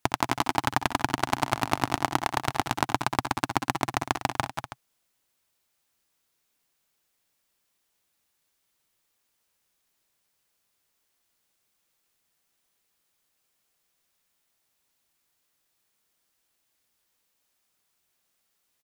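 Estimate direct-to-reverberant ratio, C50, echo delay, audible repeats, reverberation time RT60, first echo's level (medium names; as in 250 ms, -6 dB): no reverb, no reverb, 64 ms, 4, no reverb, -16.0 dB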